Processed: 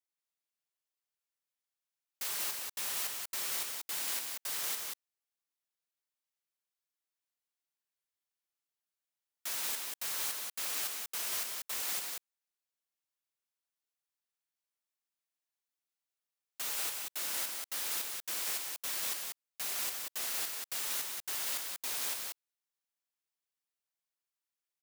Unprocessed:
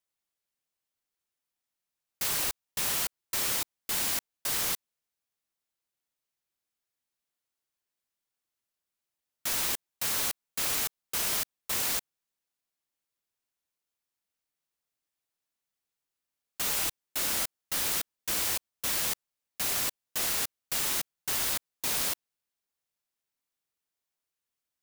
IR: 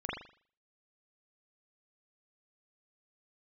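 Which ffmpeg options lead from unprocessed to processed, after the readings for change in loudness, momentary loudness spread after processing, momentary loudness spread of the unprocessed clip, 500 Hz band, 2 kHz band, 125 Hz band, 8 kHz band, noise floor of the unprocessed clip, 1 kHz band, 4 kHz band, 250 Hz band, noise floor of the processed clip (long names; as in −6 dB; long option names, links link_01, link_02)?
−5.5 dB, 5 LU, 4 LU, −8.5 dB, −6.0 dB, below −15 dB, −5.5 dB, below −85 dBFS, −6.5 dB, −5.5 dB, −13.0 dB, below −85 dBFS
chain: -filter_complex "[0:a]highpass=frequency=560:poles=1,asplit=2[link_01][link_02];[link_02]aecho=0:1:186:0.668[link_03];[link_01][link_03]amix=inputs=2:normalize=0,volume=-7dB"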